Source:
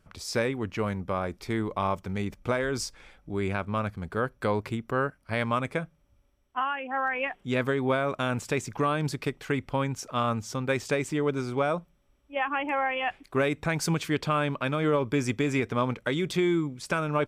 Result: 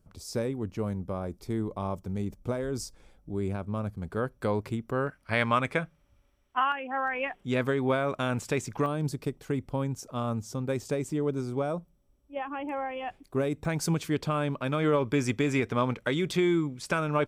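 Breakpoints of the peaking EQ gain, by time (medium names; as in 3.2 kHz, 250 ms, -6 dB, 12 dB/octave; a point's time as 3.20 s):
peaking EQ 2.1 kHz 2.5 oct
-14.5 dB
from 4.02 s -6.5 dB
from 5.07 s +4 dB
from 6.72 s -2.5 dB
from 8.86 s -12.5 dB
from 13.65 s -6.5 dB
from 14.72 s -0.5 dB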